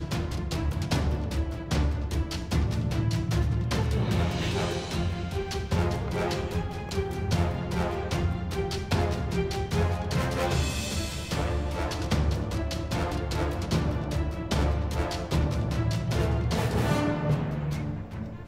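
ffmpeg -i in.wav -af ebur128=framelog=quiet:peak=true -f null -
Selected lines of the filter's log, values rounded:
Integrated loudness:
  I:         -28.8 LUFS
  Threshold: -38.8 LUFS
Loudness range:
  LRA:         1.7 LU
  Threshold: -48.7 LUFS
  LRA low:   -29.5 LUFS
  LRA high:  -27.8 LUFS
True peak:
  Peak:      -13.2 dBFS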